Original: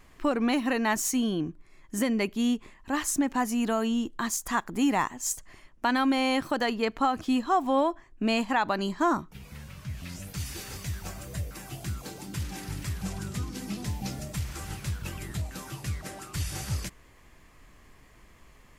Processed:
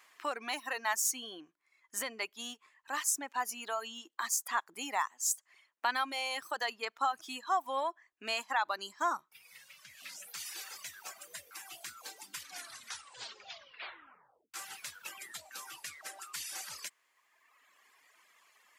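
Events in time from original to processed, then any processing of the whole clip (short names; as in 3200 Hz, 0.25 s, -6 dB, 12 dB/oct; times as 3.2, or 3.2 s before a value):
12.4 tape stop 2.14 s
whole clip: reverb removal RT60 1.7 s; HPF 990 Hz 12 dB/oct; dynamic EQ 2400 Hz, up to -4 dB, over -43 dBFS, Q 0.73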